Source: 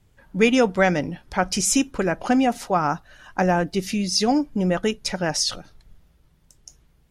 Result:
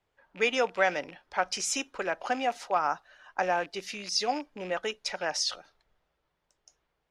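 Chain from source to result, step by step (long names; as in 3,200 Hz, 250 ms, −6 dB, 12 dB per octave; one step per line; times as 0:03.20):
loose part that buzzes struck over −28 dBFS, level −28 dBFS
three-way crossover with the lows and the highs turned down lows −21 dB, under 440 Hz, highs −13 dB, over 6,700 Hz
one half of a high-frequency compander decoder only
level −4.5 dB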